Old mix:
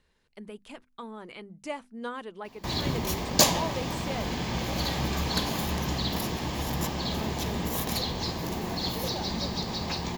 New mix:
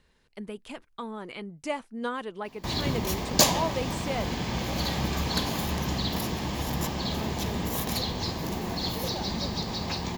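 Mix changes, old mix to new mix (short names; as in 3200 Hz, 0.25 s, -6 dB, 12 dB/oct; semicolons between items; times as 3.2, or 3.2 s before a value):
speech +4.0 dB; master: remove notches 50/100/150/200/250 Hz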